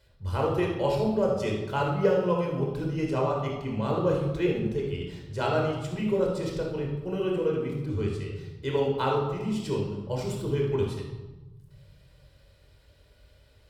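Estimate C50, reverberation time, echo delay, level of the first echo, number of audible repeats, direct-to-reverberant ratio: 2.5 dB, 1.1 s, no echo, no echo, no echo, -1.5 dB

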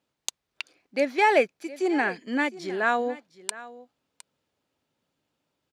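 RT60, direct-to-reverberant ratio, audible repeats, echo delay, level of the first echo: no reverb, no reverb, 1, 711 ms, -18.0 dB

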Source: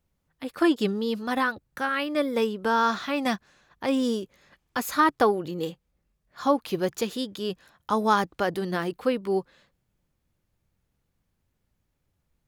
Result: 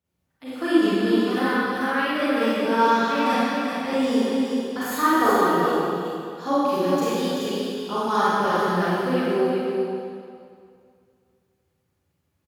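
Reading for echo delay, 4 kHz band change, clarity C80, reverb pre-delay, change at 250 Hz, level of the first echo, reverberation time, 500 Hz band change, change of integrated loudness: 384 ms, +3.5 dB, -4.5 dB, 32 ms, +5.5 dB, -4.5 dB, 2.3 s, +4.5 dB, +4.0 dB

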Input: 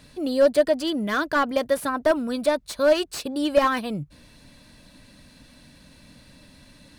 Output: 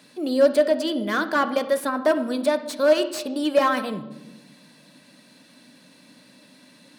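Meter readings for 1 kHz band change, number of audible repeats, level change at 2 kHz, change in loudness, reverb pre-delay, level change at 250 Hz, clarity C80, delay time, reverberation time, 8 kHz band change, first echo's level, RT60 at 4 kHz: +0.5 dB, no echo, +0.5 dB, +1.0 dB, 16 ms, +1.0 dB, 14.5 dB, no echo, 1.1 s, 0.0 dB, no echo, 0.75 s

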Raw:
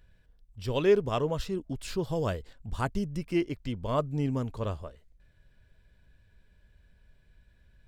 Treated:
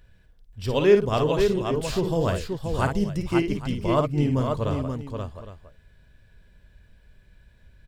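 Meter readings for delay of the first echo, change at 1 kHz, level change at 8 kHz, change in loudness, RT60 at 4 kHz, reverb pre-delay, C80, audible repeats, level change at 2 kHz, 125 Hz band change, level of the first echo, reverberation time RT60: 54 ms, +7.0 dB, +7.0 dB, +6.5 dB, no reverb, no reverb, no reverb, 3, +7.0 dB, +7.0 dB, -6.5 dB, no reverb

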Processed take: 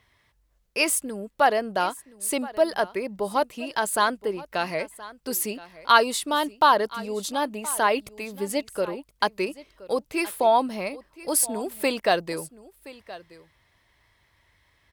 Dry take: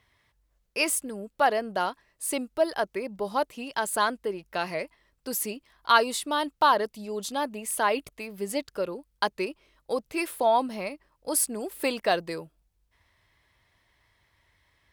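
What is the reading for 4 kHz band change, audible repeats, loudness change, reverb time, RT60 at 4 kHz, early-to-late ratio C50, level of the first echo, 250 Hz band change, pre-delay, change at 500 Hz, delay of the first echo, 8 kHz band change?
+3.0 dB, 1, +3.0 dB, no reverb, no reverb, no reverb, -18.5 dB, +3.0 dB, no reverb, +3.0 dB, 1022 ms, +3.0 dB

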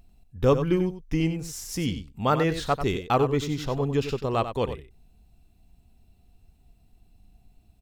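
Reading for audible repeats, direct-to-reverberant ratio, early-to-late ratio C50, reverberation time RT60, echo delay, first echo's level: 1, no reverb, no reverb, no reverb, 93 ms, -10.0 dB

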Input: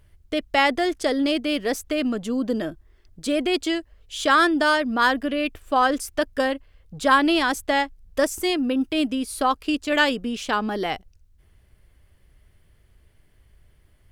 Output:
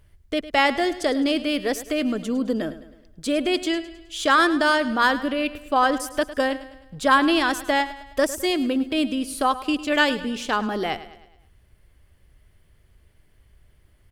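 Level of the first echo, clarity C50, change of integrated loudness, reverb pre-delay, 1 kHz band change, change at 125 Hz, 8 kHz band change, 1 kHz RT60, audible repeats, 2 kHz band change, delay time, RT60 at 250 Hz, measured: -15.0 dB, no reverb, 0.0 dB, no reverb, 0.0 dB, 0.0 dB, 0.0 dB, no reverb, 4, 0.0 dB, 105 ms, no reverb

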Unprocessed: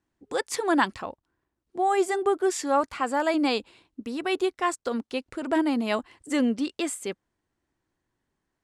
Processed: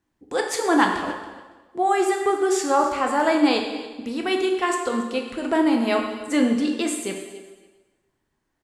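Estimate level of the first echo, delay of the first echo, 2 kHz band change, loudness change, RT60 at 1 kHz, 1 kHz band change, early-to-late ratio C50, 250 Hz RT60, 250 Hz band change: -18.0 dB, 280 ms, +4.5 dB, +4.5 dB, 1.3 s, +4.5 dB, 5.0 dB, 1.3 s, +5.0 dB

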